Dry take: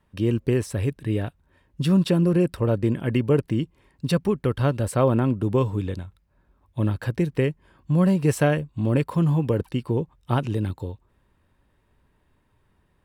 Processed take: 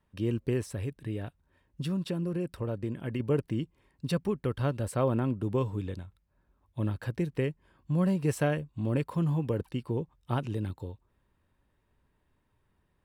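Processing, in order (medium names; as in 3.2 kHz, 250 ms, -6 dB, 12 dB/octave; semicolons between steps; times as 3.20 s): 0.63–3.20 s: compression 2:1, threshold -25 dBFS, peak gain reduction 6 dB; trim -7.5 dB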